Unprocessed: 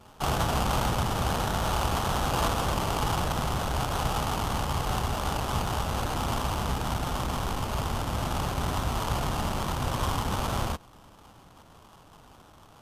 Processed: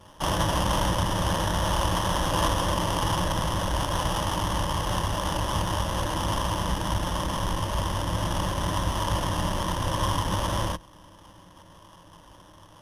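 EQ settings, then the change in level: rippled EQ curve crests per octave 1.2, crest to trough 10 dB; +1.0 dB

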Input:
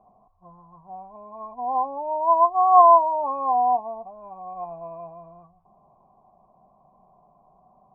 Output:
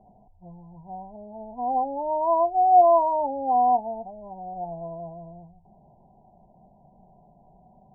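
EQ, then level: brick-wall FIR low-pass 1 kHz; distance through air 450 m; bass shelf 400 Hz +10.5 dB; 0.0 dB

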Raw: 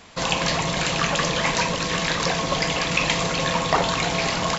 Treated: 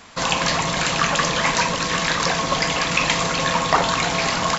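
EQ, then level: tone controls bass +1 dB, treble +5 dB; peaking EQ 250 Hz +4 dB 0.33 oct; peaking EQ 1.3 kHz +6.5 dB 1.6 oct; -1.5 dB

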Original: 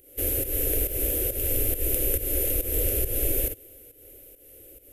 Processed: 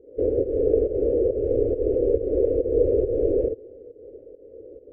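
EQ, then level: resonant low-pass 460 Hz, resonance Q 4.9; distance through air 92 m; bass shelf 63 Hz -10.5 dB; +3.5 dB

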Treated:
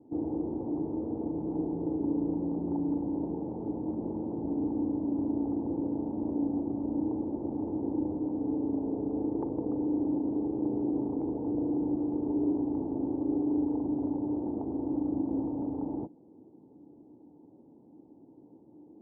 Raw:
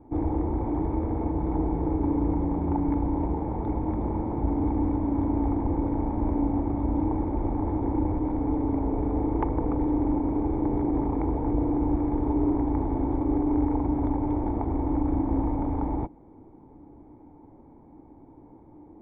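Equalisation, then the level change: Butterworth band-pass 300 Hz, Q 0.67; -3.5 dB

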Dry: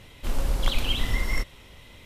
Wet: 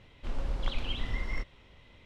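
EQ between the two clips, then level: Bessel low-pass 3.4 kHz, order 2; -7.5 dB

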